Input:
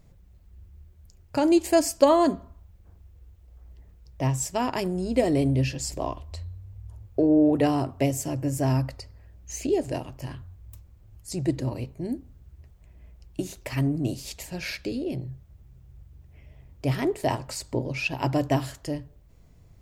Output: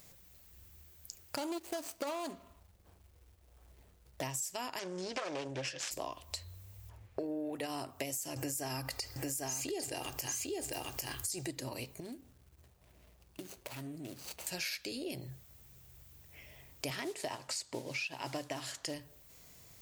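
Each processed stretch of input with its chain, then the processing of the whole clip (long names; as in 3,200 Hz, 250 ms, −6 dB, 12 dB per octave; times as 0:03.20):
0:01.36–0:04.23: running median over 25 samples + saturating transformer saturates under 630 Hz
0:04.79–0:05.91: phase distortion by the signal itself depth 0.61 ms + loudspeaker in its box 130–6,200 Hz, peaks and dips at 240 Hz −10 dB, 540 Hz +7 dB, 1,600 Hz +6 dB, 4,100 Hz −4 dB
0:06.89–0:07.58: running median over 5 samples + parametric band 2,100 Hz +6.5 dB 1.1 octaves + one half of a high-frequency compander decoder only
0:08.36–0:11.48: comb filter 2.5 ms, depth 37% + single-tap delay 799 ms −5 dB + envelope flattener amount 50%
0:12.00–0:14.47: running median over 25 samples + high-pass filter 45 Hz + downward compressor 2 to 1, threshold −47 dBFS
0:16.90–0:18.94: high-pass filter 80 Hz + noise that follows the level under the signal 24 dB + high-frequency loss of the air 66 metres
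whole clip: spectral tilt +4 dB per octave; brickwall limiter −16.5 dBFS; downward compressor 6 to 1, threshold −40 dBFS; level +3 dB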